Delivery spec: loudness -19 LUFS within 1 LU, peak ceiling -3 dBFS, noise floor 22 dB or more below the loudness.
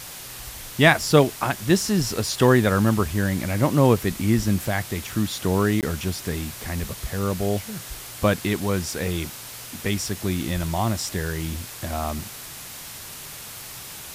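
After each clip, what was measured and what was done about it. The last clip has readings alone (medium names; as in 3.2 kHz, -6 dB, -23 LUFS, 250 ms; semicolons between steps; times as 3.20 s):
dropouts 1; longest dropout 18 ms; noise floor -38 dBFS; noise floor target -45 dBFS; loudness -23.0 LUFS; peak level -2.5 dBFS; loudness target -19.0 LUFS
-> interpolate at 5.81 s, 18 ms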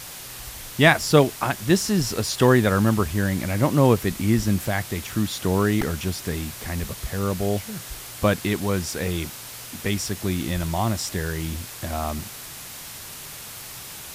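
dropouts 0; noise floor -38 dBFS; noise floor target -45 dBFS
-> noise reduction 7 dB, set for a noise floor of -38 dBFS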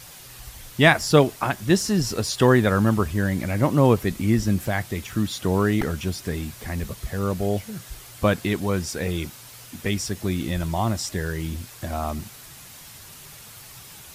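noise floor -44 dBFS; noise floor target -45 dBFS
-> noise reduction 6 dB, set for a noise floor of -44 dBFS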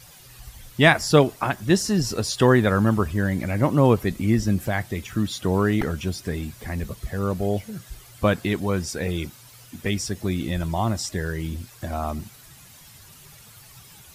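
noise floor -48 dBFS; loudness -23.5 LUFS; peak level -2.5 dBFS; loudness target -19.0 LUFS
-> trim +4.5 dB; peak limiter -3 dBFS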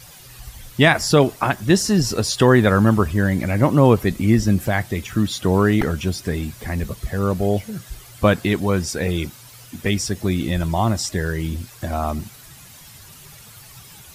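loudness -19.5 LUFS; peak level -3.0 dBFS; noise floor -44 dBFS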